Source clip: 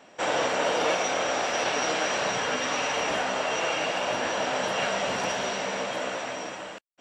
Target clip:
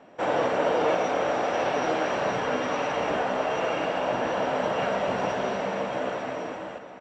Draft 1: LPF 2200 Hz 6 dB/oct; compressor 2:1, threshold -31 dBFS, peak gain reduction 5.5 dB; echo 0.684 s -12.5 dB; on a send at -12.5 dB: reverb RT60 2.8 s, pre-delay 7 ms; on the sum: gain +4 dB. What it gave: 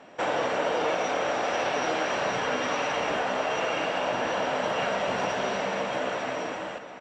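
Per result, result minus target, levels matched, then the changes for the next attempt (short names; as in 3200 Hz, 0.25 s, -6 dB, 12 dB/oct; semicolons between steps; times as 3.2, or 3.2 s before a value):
compressor: peak gain reduction +5.5 dB; 2000 Hz band +3.0 dB
remove: compressor 2:1, threshold -31 dBFS, peak gain reduction 5.5 dB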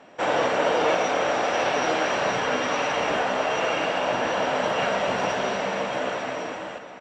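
2000 Hz band +2.5 dB
change: LPF 850 Hz 6 dB/oct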